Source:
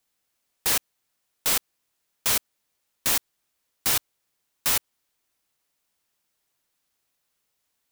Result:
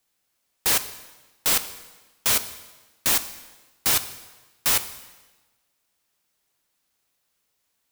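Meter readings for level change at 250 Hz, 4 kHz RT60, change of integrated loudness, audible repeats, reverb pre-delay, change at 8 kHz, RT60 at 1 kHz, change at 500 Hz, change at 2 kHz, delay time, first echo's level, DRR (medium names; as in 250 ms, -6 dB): +2.5 dB, 1.1 s, +2.5 dB, no echo, 5 ms, +2.5 dB, 1.2 s, +2.5 dB, +2.5 dB, no echo, no echo, 11.0 dB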